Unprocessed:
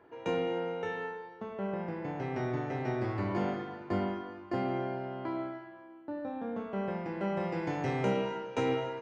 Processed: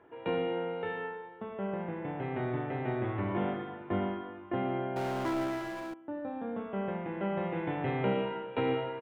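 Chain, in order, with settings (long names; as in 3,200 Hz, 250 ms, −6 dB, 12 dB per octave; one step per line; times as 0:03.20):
downsampling to 8,000 Hz
0:04.96–0:05.94: power curve on the samples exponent 0.5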